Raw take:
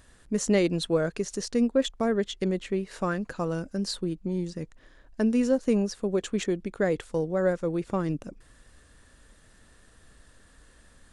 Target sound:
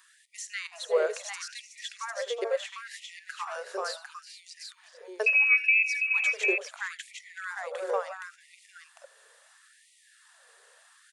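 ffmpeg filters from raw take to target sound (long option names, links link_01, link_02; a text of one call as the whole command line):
ffmpeg -i in.wav -filter_complex "[0:a]acrossover=split=290|520|2000[link_01][link_02][link_03][link_04];[link_04]alimiter=level_in=6dB:limit=-24dB:level=0:latency=1:release=354,volume=-6dB[link_05];[link_01][link_02][link_03][link_05]amix=inputs=4:normalize=0,asettb=1/sr,asplit=3[link_06][link_07][link_08];[link_06]atrim=end=5.264[link_09];[link_07]atrim=start=5.26:end=5.83,asetpts=PTS-STARTPTS,afade=type=in:duration=0.004:curve=qsin,afade=type=out:start_time=0.566:duration=0.004:curve=qsin,lowpass=frequency=2400:width_type=q:width=0.5098,lowpass=frequency=2400:width_type=q:width=0.6013,lowpass=frequency=2400:width_type=q:width=0.9,lowpass=frequency=2400:width_type=q:width=2.563,afreqshift=-2800[link_10];[link_08]atrim=start=5.826[link_11];[link_09][link_10]acrossfade=duration=0.004:curve1=hsin:curve2=qsin[link_12];[link_12][link_11]acrossfade=duration=0.004:curve1=qsin:curve2=hsin,aecho=1:1:81|374|400|440|751:0.141|0.2|0.112|0.237|0.562,afftfilt=real='re*gte(b*sr/1024,380*pow(1900/380,0.5+0.5*sin(2*PI*0.73*pts/sr)))':imag='im*gte(b*sr/1024,380*pow(1900/380,0.5+0.5*sin(2*PI*0.73*pts/sr)))':win_size=1024:overlap=0.75,volume=1dB" out.wav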